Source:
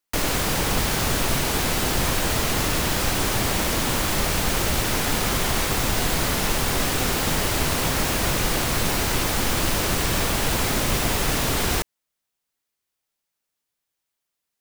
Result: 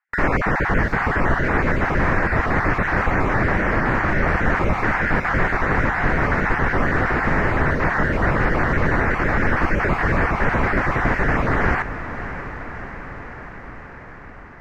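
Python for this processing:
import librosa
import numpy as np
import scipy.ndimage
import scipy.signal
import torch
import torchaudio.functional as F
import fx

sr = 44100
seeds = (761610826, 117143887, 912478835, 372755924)

y = fx.spec_dropout(x, sr, seeds[0], share_pct=21)
y = fx.high_shelf_res(y, sr, hz=2500.0, db=-11.0, q=3.0)
y = fx.rider(y, sr, range_db=10, speed_s=0.5)
y = fx.air_absorb(y, sr, metres=200.0)
y = fx.echo_diffused(y, sr, ms=624, feedback_pct=69, wet_db=-12)
y = F.gain(torch.from_numpy(y), 5.0).numpy()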